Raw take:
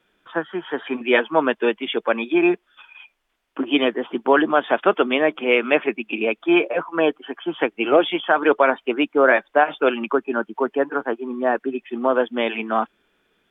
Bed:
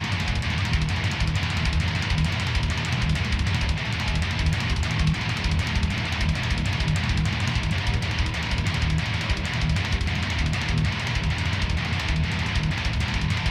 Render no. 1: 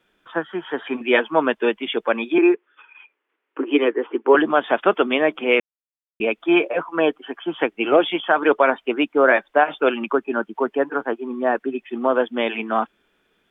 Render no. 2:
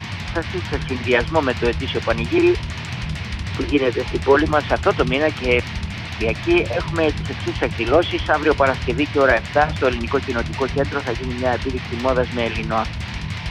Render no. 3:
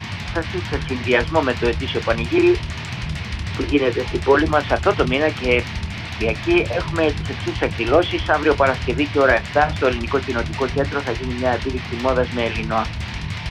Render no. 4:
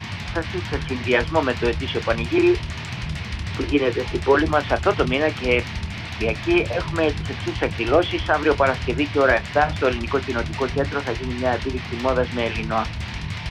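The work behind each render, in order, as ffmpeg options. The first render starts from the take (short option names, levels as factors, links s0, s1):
-filter_complex "[0:a]asettb=1/sr,asplit=3[s0][s1][s2];[s0]atrim=end=2.384[s3];[s1]atrim=start=2.38:end=4.35,asetpts=PTS-STARTPTS,afade=t=in:d=0.004:c=qsin,afade=t=out:st=1.966:d=0.004:c=qsin,highpass=f=290:w=0.5412,highpass=f=290:w=1.3066,equalizer=f=310:t=q:w=4:g=4,equalizer=f=440:t=q:w=4:g=7,equalizer=f=680:t=q:w=4:g=-9,lowpass=f=2600:w=0.5412,lowpass=f=2600:w=1.3066[s4];[s2]atrim=start=4.346[s5];[s3][s4]acrossfade=d=0.004:c1=hsin:c2=qsin[s6];[s6][s5]acrossfade=d=0.004:c1=qsin:c2=hsin,asplit=3[s7][s8][s9];[s7]atrim=end=5.6,asetpts=PTS-STARTPTS,afade=t=out:st=5.596:d=0.004:c=hsin[s10];[s8]atrim=start=5.6:end=6.2,asetpts=PTS-STARTPTS,volume=0[s11];[s9]atrim=start=6.2,asetpts=PTS-STARTPTS,afade=t=in:d=0.004:c=hsin[s12];[s10][s11][s12]concat=n=3:v=0:a=1"
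-filter_complex "[1:a]volume=0.708[s0];[0:a][s0]amix=inputs=2:normalize=0"
-filter_complex "[0:a]asplit=2[s0][s1];[s1]adelay=28,volume=0.211[s2];[s0][s2]amix=inputs=2:normalize=0"
-af "volume=0.794"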